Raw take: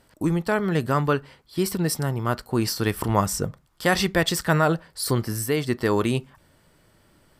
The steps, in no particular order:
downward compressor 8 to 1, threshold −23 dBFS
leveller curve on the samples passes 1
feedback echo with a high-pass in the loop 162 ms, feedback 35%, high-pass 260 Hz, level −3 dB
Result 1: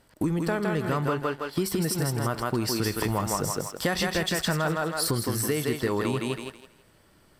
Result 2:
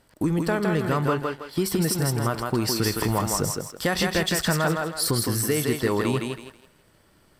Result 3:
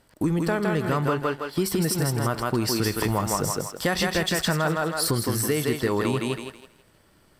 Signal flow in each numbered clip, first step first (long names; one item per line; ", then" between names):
feedback echo with a high-pass in the loop, then leveller curve on the samples, then downward compressor
downward compressor, then feedback echo with a high-pass in the loop, then leveller curve on the samples
feedback echo with a high-pass in the loop, then downward compressor, then leveller curve on the samples